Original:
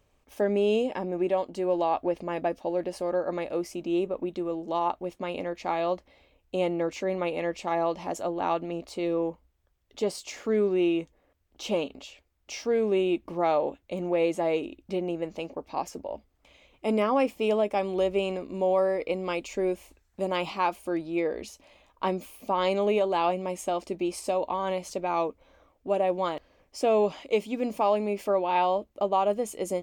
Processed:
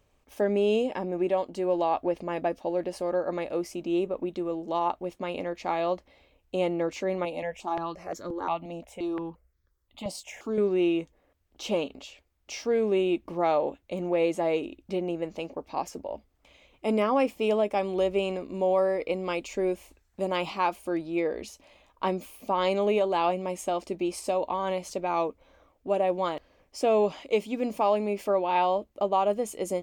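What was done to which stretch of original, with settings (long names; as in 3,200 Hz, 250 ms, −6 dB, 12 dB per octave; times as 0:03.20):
0:07.25–0:10.58: step-sequenced phaser 5.7 Hz 400–2,800 Hz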